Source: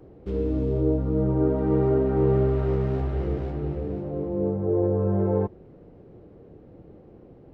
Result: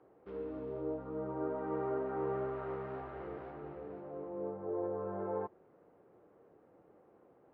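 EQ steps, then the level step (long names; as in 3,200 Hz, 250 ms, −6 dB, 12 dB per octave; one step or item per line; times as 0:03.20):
resonant band-pass 1,200 Hz, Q 1.3
high-frequency loss of the air 110 metres
−2.5 dB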